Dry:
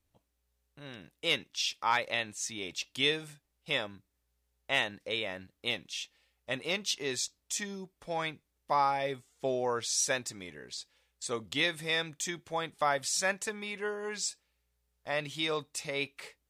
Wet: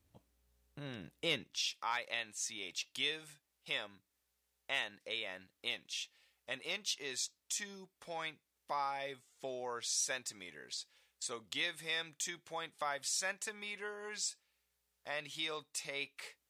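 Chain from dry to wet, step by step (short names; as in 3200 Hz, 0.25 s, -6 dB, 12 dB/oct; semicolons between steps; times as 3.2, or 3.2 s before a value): low shelf 240 Hz +10.5 dB; compressor 1.5:1, threshold -49 dBFS, peak gain reduction 9.5 dB; HPF 150 Hz 6 dB/oct, from 1.67 s 1100 Hz; gain +2.5 dB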